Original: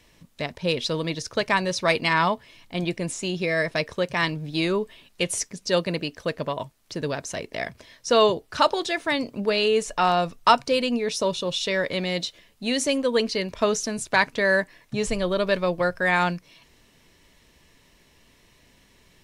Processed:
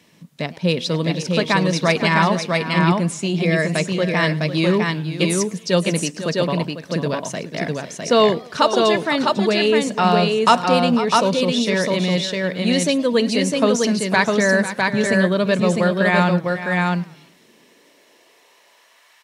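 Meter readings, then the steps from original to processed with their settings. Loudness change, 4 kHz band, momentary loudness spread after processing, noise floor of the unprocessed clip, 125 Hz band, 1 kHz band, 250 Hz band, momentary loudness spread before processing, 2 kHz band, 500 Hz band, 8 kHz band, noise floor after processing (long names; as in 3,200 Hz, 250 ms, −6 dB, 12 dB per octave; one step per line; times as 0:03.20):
+6.0 dB, +4.5 dB, 7 LU, −59 dBFS, +11.5 dB, +4.5 dB, +10.0 dB, 11 LU, +4.5 dB, +5.5 dB, +4.5 dB, −54 dBFS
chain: high-pass filter sweep 170 Hz → 1,300 Hz, 0:16.59–0:19.11
multi-tap delay 497/655 ms −12.5/−3 dB
feedback echo with a swinging delay time 108 ms, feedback 41%, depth 217 cents, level −21.5 dB
level +2.5 dB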